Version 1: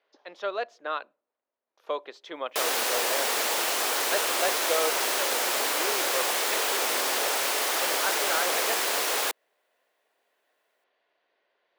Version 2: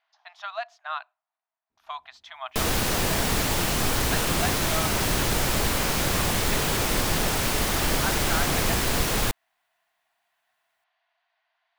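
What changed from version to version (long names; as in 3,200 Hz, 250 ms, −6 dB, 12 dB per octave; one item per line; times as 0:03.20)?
speech: add linear-phase brick-wall high-pass 630 Hz
master: remove high-pass filter 420 Hz 24 dB per octave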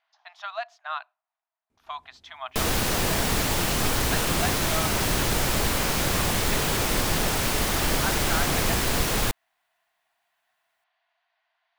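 second sound +11.0 dB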